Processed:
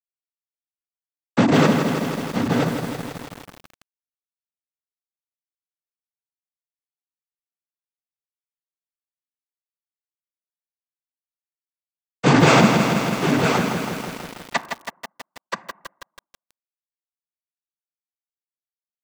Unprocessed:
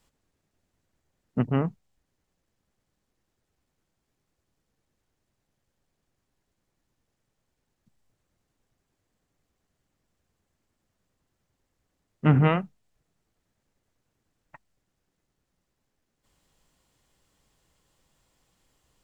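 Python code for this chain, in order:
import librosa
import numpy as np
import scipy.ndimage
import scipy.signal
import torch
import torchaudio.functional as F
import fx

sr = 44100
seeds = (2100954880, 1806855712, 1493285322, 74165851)

p1 = scipy.signal.sosfilt(scipy.signal.butter(2, 310.0, 'highpass', fs=sr, output='sos'), x)
p2 = fx.high_shelf(p1, sr, hz=3200.0, db=2.5)
p3 = fx.over_compress(p2, sr, threshold_db=-32.0, ratio=-0.5)
p4 = p2 + (p3 * 10.0 ** (2.0 / 20.0))
p5 = fx.fuzz(p4, sr, gain_db=42.0, gate_db=-47.0)
p6 = p5 + fx.echo_single(p5, sr, ms=977, db=-7.0, dry=0)
p7 = fx.rev_fdn(p6, sr, rt60_s=0.9, lf_ratio=1.0, hf_ratio=0.3, size_ms=29.0, drr_db=13.5)
p8 = fx.noise_vocoder(p7, sr, seeds[0], bands=16)
p9 = fx.echo_crushed(p8, sr, ms=162, feedback_pct=80, bits=6, wet_db=-6.0)
y = p9 * 10.0 ** (1.0 / 20.0)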